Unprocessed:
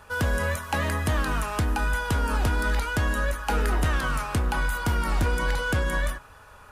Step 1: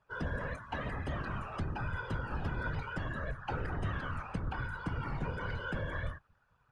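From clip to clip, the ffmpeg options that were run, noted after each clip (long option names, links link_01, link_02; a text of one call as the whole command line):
ffmpeg -i in.wav -af "afftdn=noise_reduction=14:noise_floor=-36,afftfilt=real='hypot(re,im)*cos(2*PI*random(0))':imag='hypot(re,im)*sin(2*PI*random(1))':win_size=512:overlap=0.75,lowpass=5100,volume=-5.5dB" out.wav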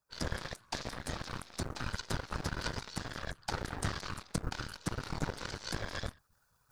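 ffmpeg -i in.wav -af "areverse,acompressor=mode=upward:threshold=-48dB:ratio=2.5,areverse,aeval=exprs='0.0631*(cos(1*acos(clip(val(0)/0.0631,-1,1)))-cos(1*PI/2))+0.02*(cos(3*acos(clip(val(0)/0.0631,-1,1)))-cos(3*PI/2))+0.00355*(cos(4*acos(clip(val(0)/0.0631,-1,1)))-cos(4*PI/2))+0.002*(cos(5*acos(clip(val(0)/0.0631,-1,1)))-cos(5*PI/2))+0.00282*(cos(7*acos(clip(val(0)/0.0631,-1,1)))-cos(7*PI/2))':channel_layout=same,aexciter=amount=9.1:drive=3.6:freq=4200,volume=5.5dB" out.wav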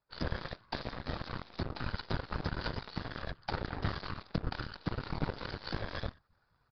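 ffmpeg -i in.wav -filter_complex "[0:a]asplit=2[link_01][link_02];[link_02]acrusher=samples=14:mix=1:aa=0.000001,volume=-6dB[link_03];[link_01][link_03]amix=inputs=2:normalize=0,aresample=11025,aresample=44100,volume=-2dB" out.wav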